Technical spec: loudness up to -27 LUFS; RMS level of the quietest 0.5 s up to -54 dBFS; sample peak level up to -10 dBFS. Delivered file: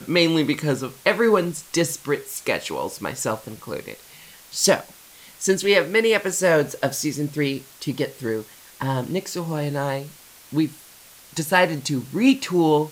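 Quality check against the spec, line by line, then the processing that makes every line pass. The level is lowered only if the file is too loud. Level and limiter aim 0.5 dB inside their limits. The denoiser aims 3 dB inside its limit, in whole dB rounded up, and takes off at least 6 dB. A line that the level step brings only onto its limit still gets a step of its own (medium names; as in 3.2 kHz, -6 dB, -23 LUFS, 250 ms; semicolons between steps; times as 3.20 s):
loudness -22.5 LUFS: fail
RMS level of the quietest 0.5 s -48 dBFS: fail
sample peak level -4.0 dBFS: fail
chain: noise reduction 6 dB, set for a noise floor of -48 dBFS; trim -5 dB; peak limiter -10.5 dBFS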